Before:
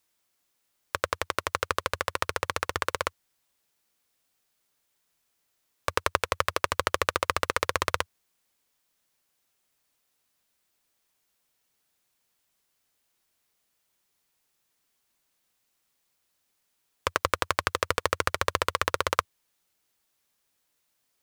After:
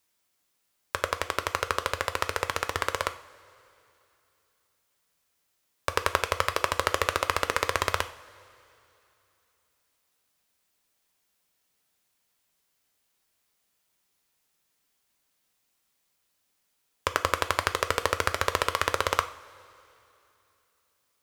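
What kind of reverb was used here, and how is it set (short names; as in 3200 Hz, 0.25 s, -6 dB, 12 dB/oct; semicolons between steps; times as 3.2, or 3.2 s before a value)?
two-slope reverb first 0.44 s, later 3 s, from -18 dB, DRR 9 dB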